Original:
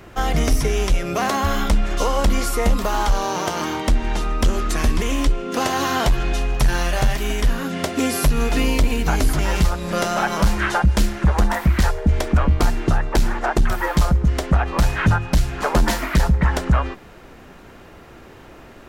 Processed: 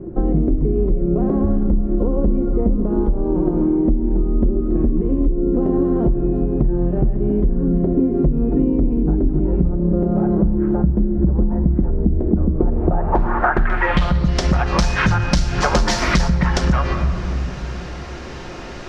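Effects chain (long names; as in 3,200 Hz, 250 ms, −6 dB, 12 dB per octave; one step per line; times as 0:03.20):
convolution reverb RT60 1.9 s, pre-delay 5 ms, DRR 6.5 dB
low-pass filter sweep 330 Hz → 5,600 Hz, 0:12.46–0:14.43
downward compressor, threshold −22 dBFS, peak gain reduction 13 dB
level +8.5 dB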